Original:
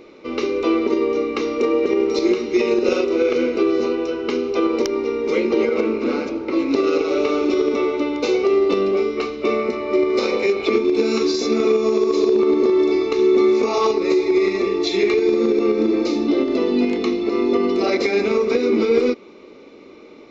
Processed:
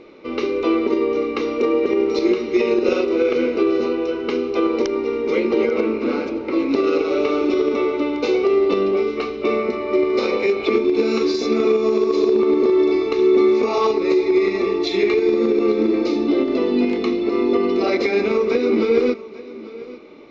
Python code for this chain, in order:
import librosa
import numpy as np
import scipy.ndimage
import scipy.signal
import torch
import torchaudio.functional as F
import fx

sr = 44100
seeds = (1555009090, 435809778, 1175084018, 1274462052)

y = scipy.signal.sosfilt(scipy.signal.butter(2, 4700.0, 'lowpass', fs=sr, output='sos'), x)
y = y + 10.0 ** (-18.0 / 20.0) * np.pad(y, (int(842 * sr / 1000.0), 0))[:len(y)]